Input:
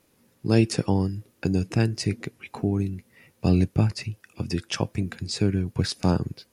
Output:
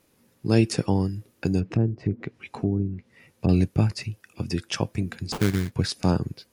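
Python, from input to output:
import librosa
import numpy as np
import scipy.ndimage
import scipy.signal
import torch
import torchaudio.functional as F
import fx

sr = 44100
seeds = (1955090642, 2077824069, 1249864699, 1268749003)

y = fx.env_lowpass_down(x, sr, base_hz=550.0, full_db=-20.5, at=(1.59, 3.49))
y = fx.sample_hold(y, sr, seeds[0], rate_hz=1900.0, jitter_pct=20, at=(5.32, 5.72))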